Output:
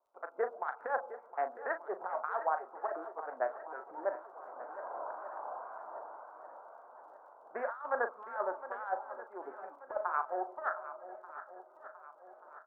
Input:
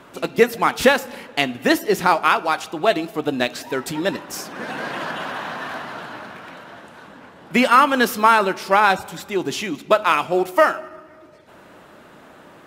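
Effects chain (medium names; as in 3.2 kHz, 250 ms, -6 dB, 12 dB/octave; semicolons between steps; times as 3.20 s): local Wiener filter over 25 samples; elliptic low-pass 1.6 kHz, stop band 50 dB; gate with hold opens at -39 dBFS; high-pass 670 Hz 24 dB/octave; tilt EQ -2 dB/octave; compressor with a negative ratio -22 dBFS, ratio -0.5; harmonic tremolo 2 Hz, crossover 1.2 kHz; crackle 35 per s -61 dBFS; doubling 38 ms -10 dB; on a send: shuffle delay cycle 1185 ms, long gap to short 1.5:1, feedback 43%, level -13.5 dB; on the sum: trim -7.5 dB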